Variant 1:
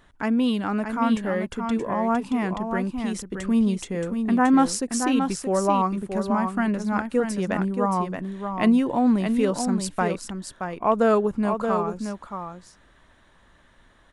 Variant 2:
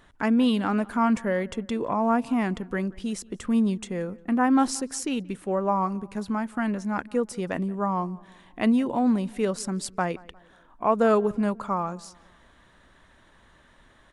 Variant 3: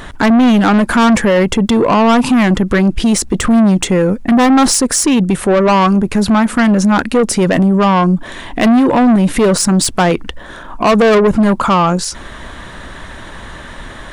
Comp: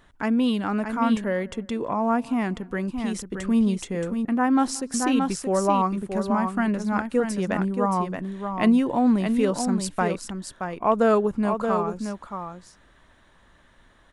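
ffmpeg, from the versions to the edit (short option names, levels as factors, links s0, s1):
-filter_complex "[1:a]asplit=2[s0][s1];[0:a]asplit=3[s2][s3][s4];[s2]atrim=end=1.242[s5];[s0]atrim=start=1.238:end=2.882[s6];[s3]atrim=start=2.878:end=4.252[s7];[s1]atrim=start=4.248:end=4.942[s8];[s4]atrim=start=4.938[s9];[s5][s6]acrossfade=d=0.004:c1=hsin:c2=hsin[s10];[s10][s7]acrossfade=d=0.004:c1=hsin:c2=hsin[s11];[s11][s8]acrossfade=d=0.004:c1=hsin:c2=hsin[s12];[s12][s9]acrossfade=d=0.004:c1=hsin:c2=hsin"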